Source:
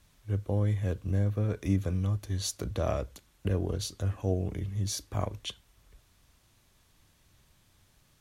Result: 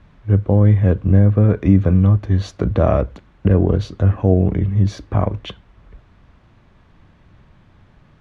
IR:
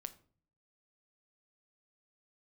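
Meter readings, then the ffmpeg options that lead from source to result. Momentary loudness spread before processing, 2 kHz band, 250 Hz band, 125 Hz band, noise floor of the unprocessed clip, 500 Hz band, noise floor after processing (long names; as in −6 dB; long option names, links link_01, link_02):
7 LU, +11.5 dB, +17.0 dB, +15.5 dB, −66 dBFS, +14.5 dB, −52 dBFS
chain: -af "lowpass=1800,equalizer=frequency=190:width=1.5:gain=4,alimiter=level_in=17dB:limit=-1dB:release=50:level=0:latency=1,volume=-2dB"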